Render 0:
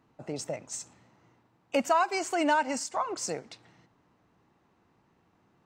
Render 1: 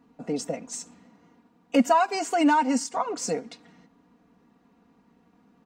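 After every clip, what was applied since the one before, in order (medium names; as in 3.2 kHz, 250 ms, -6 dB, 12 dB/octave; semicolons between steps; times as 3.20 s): peaking EQ 240 Hz +7.5 dB 1.7 oct; comb 4.2 ms, depth 80%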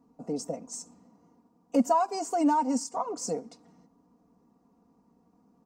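high-order bell 2.4 kHz -13 dB; trim -3.5 dB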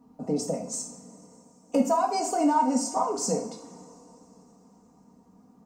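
compression 2:1, threshold -29 dBFS, peak gain reduction 6.5 dB; two-slope reverb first 0.52 s, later 3.9 s, from -22 dB, DRR 2 dB; trim +4.5 dB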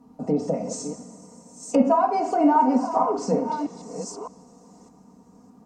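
chunks repeated in reverse 611 ms, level -10.5 dB; low-pass that closes with the level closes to 2.1 kHz, closed at -23.5 dBFS; trim +4.5 dB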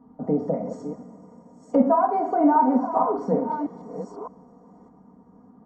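Savitzky-Golay filter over 41 samples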